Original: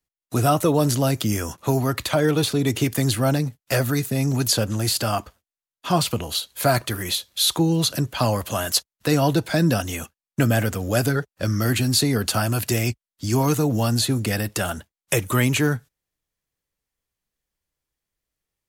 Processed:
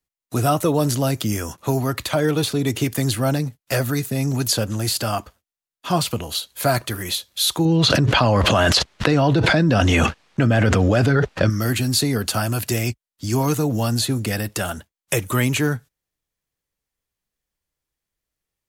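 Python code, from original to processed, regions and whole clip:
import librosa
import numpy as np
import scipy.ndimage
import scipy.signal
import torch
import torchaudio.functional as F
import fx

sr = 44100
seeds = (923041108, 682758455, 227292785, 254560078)

y = fx.chain(x, sr, fx.lowpass(hz=3700.0, slope=12),
    fx.env_flatten(amount_pct=100), at=(7.65, 11.5))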